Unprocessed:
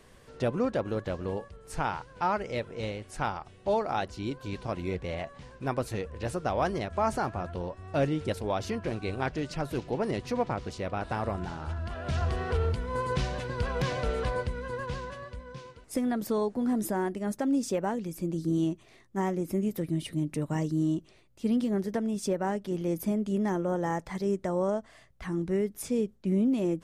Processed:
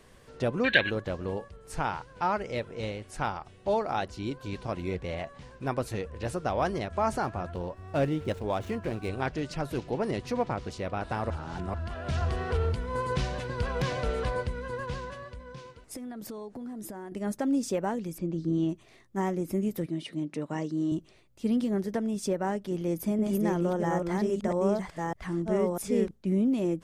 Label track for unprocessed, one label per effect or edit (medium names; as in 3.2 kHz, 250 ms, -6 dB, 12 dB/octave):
0.640000	0.900000	time-frequency box 1.5–4.4 kHz +23 dB
7.550000	9.090000	median filter over 9 samples
11.300000	11.740000	reverse
15.200000	17.120000	compression, threshold -37 dBFS
18.180000	18.690000	distance through air 130 m
19.860000	20.920000	band-pass 220–5800 Hz
22.540000	26.110000	chunks repeated in reverse 648 ms, level -2 dB